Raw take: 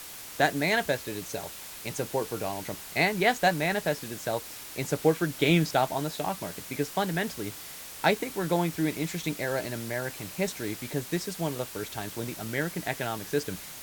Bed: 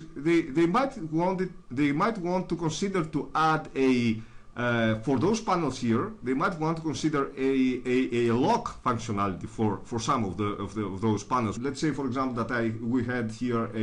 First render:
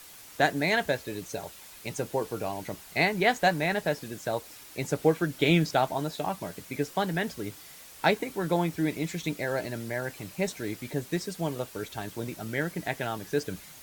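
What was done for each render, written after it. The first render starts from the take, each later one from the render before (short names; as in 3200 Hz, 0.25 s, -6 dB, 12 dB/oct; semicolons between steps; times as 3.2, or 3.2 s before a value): denoiser 7 dB, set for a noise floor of -43 dBFS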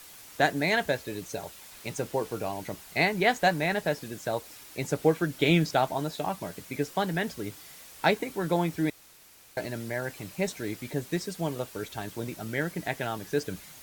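1.71–2.38 level-crossing sampler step -46 dBFS; 8.9–9.57 room tone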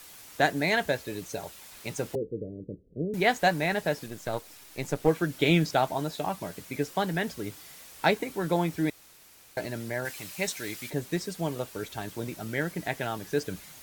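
2.15–3.14 steep low-pass 520 Hz 72 dB/oct; 4.06–5.08 half-wave gain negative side -7 dB; 10.05–10.9 tilt shelf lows -6 dB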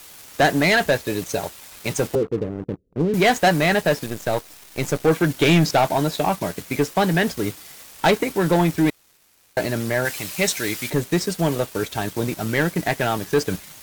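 sample leveller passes 3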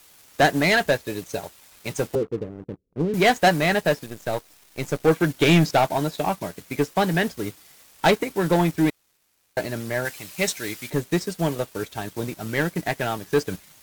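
upward expander 1.5:1, over -31 dBFS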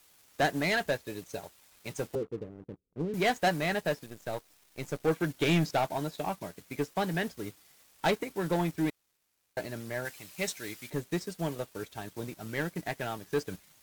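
gain -9.5 dB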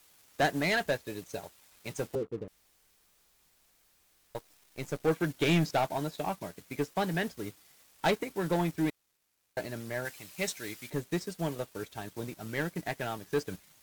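2.48–4.35 room tone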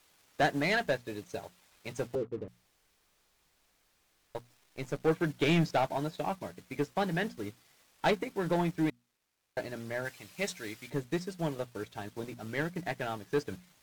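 high shelf 7500 Hz -9.5 dB; notches 60/120/180/240 Hz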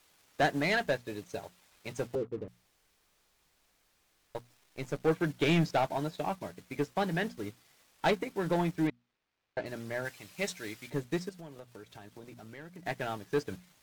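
8.87–9.66 LPF 3800 Hz; 11.29–12.86 compressor 4:1, threshold -46 dBFS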